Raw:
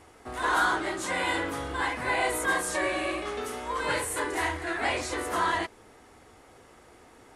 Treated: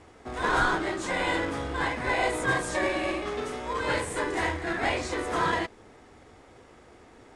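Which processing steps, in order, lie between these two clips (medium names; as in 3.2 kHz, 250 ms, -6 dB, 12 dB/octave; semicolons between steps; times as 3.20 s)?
in parallel at -7.5 dB: sample-and-hold 30×; on the sum: low-pass 9.4 kHz 24 dB/octave; treble shelf 7.2 kHz -6 dB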